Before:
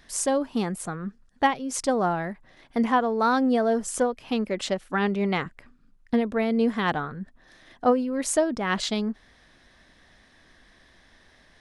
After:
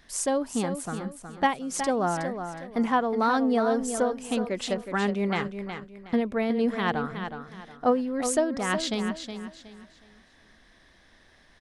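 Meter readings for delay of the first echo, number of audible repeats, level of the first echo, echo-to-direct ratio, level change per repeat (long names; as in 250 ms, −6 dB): 367 ms, 3, −8.5 dB, −8.0 dB, −10.5 dB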